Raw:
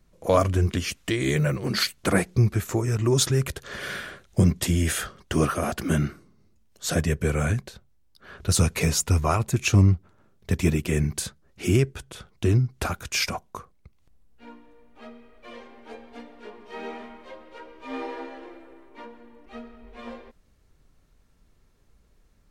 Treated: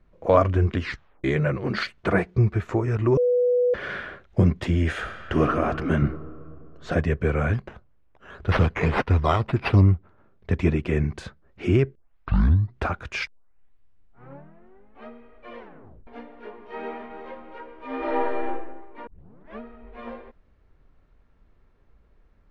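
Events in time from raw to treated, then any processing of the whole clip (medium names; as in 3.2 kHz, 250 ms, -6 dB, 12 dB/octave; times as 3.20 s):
0.81 s: tape stop 0.43 s
2.01–2.64 s: comb of notches 270 Hz
3.17–3.74 s: bleep 492 Hz -19.5 dBFS
4.89–5.50 s: reverb throw, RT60 2.6 s, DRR 5.5 dB
6.02–6.92 s: tilt EQ -2 dB/octave
7.53–9.81 s: decimation with a swept rate 8×, swing 60% 1.8 Hz
11.95 s: tape start 0.82 s
13.27 s: tape start 1.81 s
15.59 s: tape stop 0.48 s
16.76–17.26 s: echo throw 340 ms, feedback 35%, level -8 dB
17.98–18.47 s: reverb throw, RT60 0.93 s, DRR -7 dB
19.07 s: tape start 0.53 s
whole clip: low-pass 2.1 kHz 12 dB/octave; peaking EQ 160 Hz -4 dB 1.5 oct; trim +3 dB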